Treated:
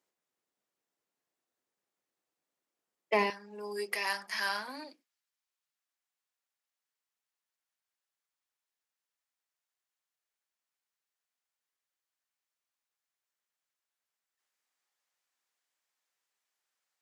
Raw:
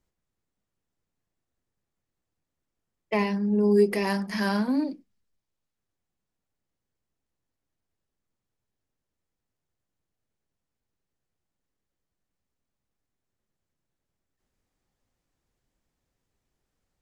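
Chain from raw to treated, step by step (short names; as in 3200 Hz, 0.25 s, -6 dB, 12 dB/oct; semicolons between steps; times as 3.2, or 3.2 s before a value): HPF 380 Hz 12 dB/oct, from 3.3 s 1100 Hz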